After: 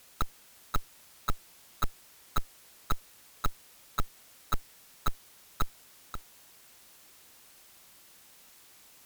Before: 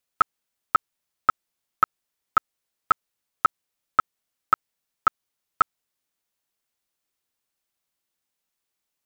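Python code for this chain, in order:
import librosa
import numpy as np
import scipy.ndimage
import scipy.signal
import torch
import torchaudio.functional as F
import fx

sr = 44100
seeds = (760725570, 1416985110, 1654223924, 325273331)

y = fx.tube_stage(x, sr, drive_db=34.0, bias=0.6)
y = fx.fold_sine(y, sr, drive_db=14, ceiling_db=-29.5)
y = y + 10.0 ** (-9.5 / 20.0) * np.pad(y, (int(533 * sr / 1000.0), 0))[:len(y)]
y = y * 10.0 ** (10.5 / 20.0)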